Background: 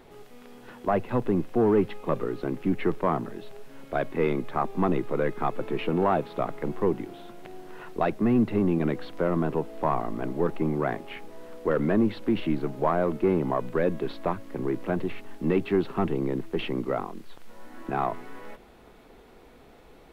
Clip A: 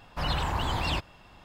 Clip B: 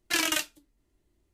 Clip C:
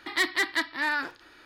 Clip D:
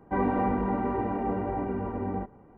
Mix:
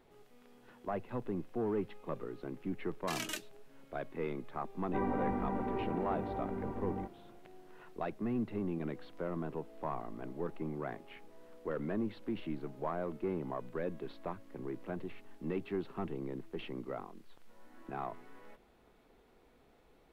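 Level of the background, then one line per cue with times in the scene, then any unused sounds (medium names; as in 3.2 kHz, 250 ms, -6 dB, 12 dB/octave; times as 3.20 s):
background -13 dB
2.97 s: add B -11 dB + rotary cabinet horn 7.5 Hz
4.82 s: add D -8.5 dB
not used: A, C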